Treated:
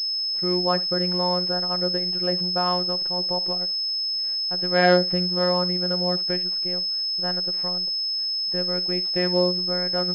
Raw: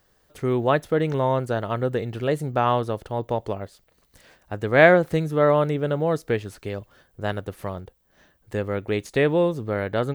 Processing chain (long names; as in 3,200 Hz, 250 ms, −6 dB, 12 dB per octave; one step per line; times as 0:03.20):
phases set to zero 179 Hz
flutter between parallel walls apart 11.4 metres, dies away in 0.21 s
switching amplifier with a slow clock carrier 5,200 Hz
level −1 dB